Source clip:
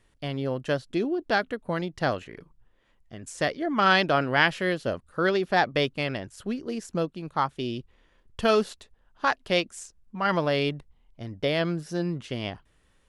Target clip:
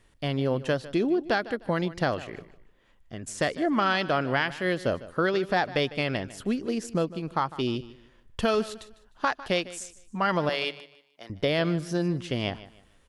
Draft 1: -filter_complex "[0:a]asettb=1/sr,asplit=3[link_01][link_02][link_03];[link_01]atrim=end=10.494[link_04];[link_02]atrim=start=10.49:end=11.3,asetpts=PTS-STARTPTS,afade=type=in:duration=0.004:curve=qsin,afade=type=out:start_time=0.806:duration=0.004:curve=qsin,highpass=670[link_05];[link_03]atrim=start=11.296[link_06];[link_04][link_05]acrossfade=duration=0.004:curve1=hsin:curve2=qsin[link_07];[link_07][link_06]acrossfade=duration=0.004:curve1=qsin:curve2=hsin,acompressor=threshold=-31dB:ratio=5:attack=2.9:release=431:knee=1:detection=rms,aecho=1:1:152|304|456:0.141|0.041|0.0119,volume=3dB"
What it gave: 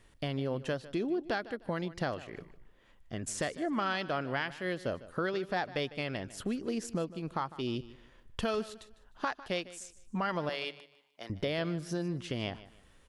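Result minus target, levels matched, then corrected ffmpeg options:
downward compressor: peak gain reduction +8 dB
-filter_complex "[0:a]asettb=1/sr,asplit=3[link_01][link_02][link_03];[link_01]atrim=end=10.494[link_04];[link_02]atrim=start=10.49:end=11.3,asetpts=PTS-STARTPTS,afade=type=in:duration=0.004:curve=qsin,afade=type=out:start_time=0.806:duration=0.004:curve=qsin,highpass=670[link_05];[link_03]atrim=start=11.296[link_06];[link_04][link_05]acrossfade=duration=0.004:curve1=hsin:curve2=qsin[link_07];[link_07][link_06]acrossfade=duration=0.004:curve1=qsin:curve2=hsin,acompressor=threshold=-21dB:ratio=5:attack=2.9:release=431:knee=1:detection=rms,aecho=1:1:152|304|456:0.141|0.041|0.0119,volume=3dB"

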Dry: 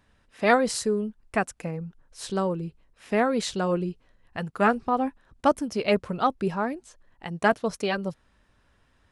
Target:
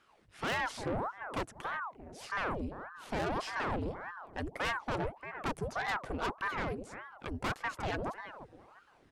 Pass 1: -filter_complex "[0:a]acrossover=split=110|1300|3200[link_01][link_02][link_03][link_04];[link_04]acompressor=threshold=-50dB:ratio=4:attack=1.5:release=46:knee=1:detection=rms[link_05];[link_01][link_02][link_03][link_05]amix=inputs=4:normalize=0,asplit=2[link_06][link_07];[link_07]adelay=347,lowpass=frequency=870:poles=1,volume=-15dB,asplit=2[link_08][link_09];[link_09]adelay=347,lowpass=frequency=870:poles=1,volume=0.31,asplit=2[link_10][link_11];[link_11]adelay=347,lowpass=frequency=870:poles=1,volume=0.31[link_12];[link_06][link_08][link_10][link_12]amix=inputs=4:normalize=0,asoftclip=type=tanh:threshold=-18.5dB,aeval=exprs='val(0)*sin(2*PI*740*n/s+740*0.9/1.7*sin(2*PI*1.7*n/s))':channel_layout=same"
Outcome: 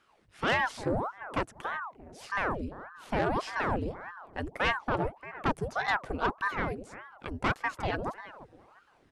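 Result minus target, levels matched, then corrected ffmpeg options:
soft clipping: distortion −6 dB
-filter_complex "[0:a]acrossover=split=110|1300|3200[link_01][link_02][link_03][link_04];[link_04]acompressor=threshold=-50dB:ratio=4:attack=1.5:release=46:knee=1:detection=rms[link_05];[link_01][link_02][link_03][link_05]amix=inputs=4:normalize=0,asplit=2[link_06][link_07];[link_07]adelay=347,lowpass=frequency=870:poles=1,volume=-15dB,asplit=2[link_08][link_09];[link_09]adelay=347,lowpass=frequency=870:poles=1,volume=0.31,asplit=2[link_10][link_11];[link_11]adelay=347,lowpass=frequency=870:poles=1,volume=0.31[link_12];[link_06][link_08][link_10][link_12]amix=inputs=4:normalize=0,asoftclip=type=tanh:threshold=-28dB,aeval=exprs='val(0)*sin(2*PI*740*n/s+740*0.9/1.7*sin(2*PI*1.7*n/s))':channel_layout=same"

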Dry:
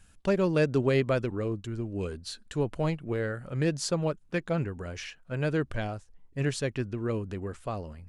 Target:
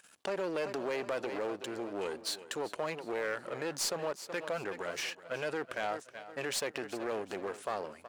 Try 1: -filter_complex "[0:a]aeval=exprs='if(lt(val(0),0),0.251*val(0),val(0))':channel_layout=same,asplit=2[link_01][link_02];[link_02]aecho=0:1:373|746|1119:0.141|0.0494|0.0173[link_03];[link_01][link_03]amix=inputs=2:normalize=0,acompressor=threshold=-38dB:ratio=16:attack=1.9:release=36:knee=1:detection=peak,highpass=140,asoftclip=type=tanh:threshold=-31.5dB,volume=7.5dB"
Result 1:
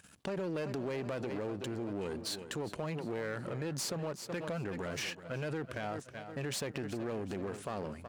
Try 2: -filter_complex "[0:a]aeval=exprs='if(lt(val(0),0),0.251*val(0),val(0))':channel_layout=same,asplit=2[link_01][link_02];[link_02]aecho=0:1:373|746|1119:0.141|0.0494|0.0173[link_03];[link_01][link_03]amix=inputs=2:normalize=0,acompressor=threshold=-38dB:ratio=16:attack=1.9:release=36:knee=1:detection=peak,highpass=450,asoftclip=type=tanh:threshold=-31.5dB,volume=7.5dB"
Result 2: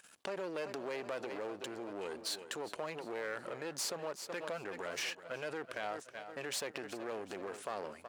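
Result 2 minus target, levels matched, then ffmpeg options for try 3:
downward compressor: peak gain reduction +6 dB
-filter_complex "[0:a]aeval=exprs='if(lt(val(0),0),0.251*val(0),val(0))':channel_layout=same,asplit=2[link_01][link_02];[link_02]aecho=0:1:373|746|1119:0.141|0.0494|0.0173[link_03];[link_01][link_03]amix=inputs=2:normalize=0,acompressor=threshold=-31.5dB:ratio=16:attack=1.9:release=36:knee=1:detection=peak,highpass=450,asoftclip=type=tanh:threshold=-31.5dB,volume=7.5dB"

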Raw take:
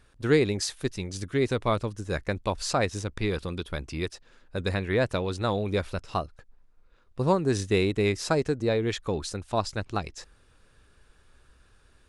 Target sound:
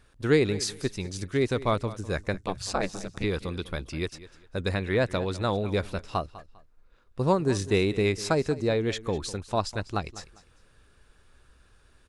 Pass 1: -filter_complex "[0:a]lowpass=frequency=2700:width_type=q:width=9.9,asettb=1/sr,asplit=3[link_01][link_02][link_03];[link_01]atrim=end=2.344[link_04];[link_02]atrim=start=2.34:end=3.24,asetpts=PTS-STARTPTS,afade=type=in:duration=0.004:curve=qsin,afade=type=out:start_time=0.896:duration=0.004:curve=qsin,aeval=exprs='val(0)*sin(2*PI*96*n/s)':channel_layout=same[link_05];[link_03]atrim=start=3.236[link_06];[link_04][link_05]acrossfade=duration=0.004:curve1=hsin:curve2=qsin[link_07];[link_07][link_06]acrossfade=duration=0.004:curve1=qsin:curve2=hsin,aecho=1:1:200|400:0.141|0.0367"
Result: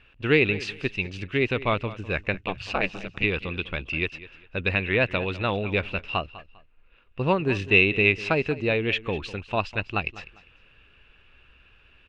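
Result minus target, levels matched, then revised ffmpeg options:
2,000 Hz band +7.0 dB
-filter_complex "[0:a]asettb=1/sr,asplit=3[link_01][link_02][link_03];[link_01]atrim=end=2.344[link_04];[link_02]atrim=start=2.34:end=3.24,asetpts=PTS-STARTPTS,afade=type=in:duration=0.004:curve=qsin,afade=type=out:start_time=0.896:duration=0.004:curve=qsin,aeval=exprs='val(0)*sin(2*PI*96*n/s)':channel_layout=same[link_05];[link_03]atrim=start=3.236[link_06];[link_04][link_05]acrossfade=duration=0.004:curve1=hsin:curve2=qsin[link_07];[link_07][link_06]acrossfade=duration=0.004:curve1=qsin:curve2=hsin,aecho=1:1:200|400:0.141|0.0367"

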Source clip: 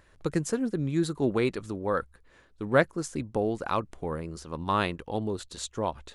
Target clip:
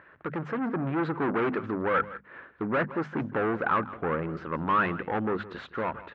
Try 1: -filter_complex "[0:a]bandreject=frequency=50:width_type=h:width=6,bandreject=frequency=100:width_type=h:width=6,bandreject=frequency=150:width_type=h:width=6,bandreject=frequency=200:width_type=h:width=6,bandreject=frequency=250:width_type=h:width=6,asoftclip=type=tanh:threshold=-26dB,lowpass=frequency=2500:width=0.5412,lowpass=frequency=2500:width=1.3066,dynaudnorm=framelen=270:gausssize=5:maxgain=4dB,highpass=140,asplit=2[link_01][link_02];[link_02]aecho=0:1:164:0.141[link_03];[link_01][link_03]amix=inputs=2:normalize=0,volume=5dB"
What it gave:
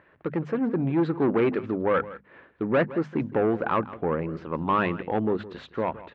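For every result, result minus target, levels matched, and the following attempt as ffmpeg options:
1,000 Hz band −3.5 dB; soft clipping: distortion −4 dB
-filter_complex "[0:a]bandreject=frequency=50:width_type=h:width=6,bandreject=frequency=100:width_type=h:width=6,bandreject=frequency=150:width_type=h:width=6,bandreject=frequency=200:width_type=h:width=6,bandreject=frequency=250:width_type=h:width=6,asoftclip=type=tanh:threshold=-26dB,lowpass=frequency=2500:width=0.5412,lowpass=frequency=2500:width=1.3066,dynaudnorm=framelen=270:gausssize=5:maxgain=4dB,highpass=140,equalizer=frequency=1400:width_type=o:width=0.88:gain=8.5,asplit=2[link_01][link_02];[link_02]aecho=0:1:164:0.141[link_03];[link_01][link_03]amix=inputs=2:normalize=0,volume=5dB"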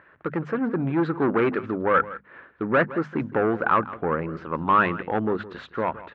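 soft clipping: distortion −4 dB
-filter_complex "[0:a]bandreject=frequency=50:width_type=h:width=6,bandreject=frequency=100:width_type=h:width=6,bandreject=frequency=150:width_type=h:width=6,bandreject=frequency=200:width_type=h:width=6,bandreject=frequency=250:width_type=h:width=6,asoftclip=type=tanh:threshold=-34dB,lowpass=frequency=2500:width=0.5412,lowpass=frequency=2500:width=1.3066,dynaudnorm=framelen=270:gausssize=5:maxgain=4dB,highpass=140,equalizer=frequency=1400:width_type=o:width=0.88:gain=8.5,asplit=2[link_01][link_02];[link_02]aecho=0:1:164:0.141[link_03];[link_01][link_03]amix=inputs=2:normalize=0,volume=5dB"

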